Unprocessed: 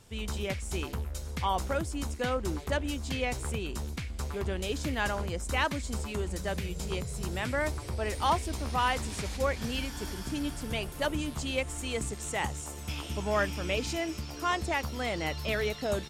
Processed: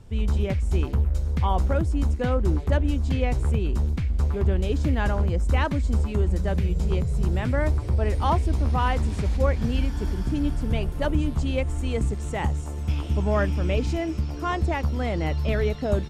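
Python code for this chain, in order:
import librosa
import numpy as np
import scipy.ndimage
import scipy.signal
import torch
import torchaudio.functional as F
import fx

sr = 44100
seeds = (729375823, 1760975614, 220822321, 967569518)

y = fx.tilt_eq(x, sr, slope=-3.0)
y = F.gain(torch.from_numpy(y), 2.0).numpy()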